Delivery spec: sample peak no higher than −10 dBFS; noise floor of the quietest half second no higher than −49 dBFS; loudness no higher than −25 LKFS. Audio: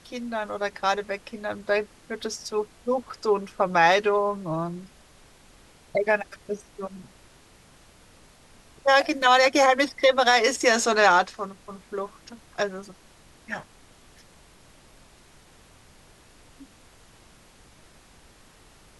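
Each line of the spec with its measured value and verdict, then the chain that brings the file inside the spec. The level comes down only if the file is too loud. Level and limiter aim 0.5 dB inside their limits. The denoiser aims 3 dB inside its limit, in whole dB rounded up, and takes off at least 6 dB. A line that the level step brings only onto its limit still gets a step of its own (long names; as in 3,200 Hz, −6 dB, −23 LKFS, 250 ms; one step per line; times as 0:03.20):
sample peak −6.5 dBFS: out of spec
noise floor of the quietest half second −54 dBFS: in spec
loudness −23.5 LKFS: out of spec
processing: level −2 dB
brickwall limiter −10.5 dBFS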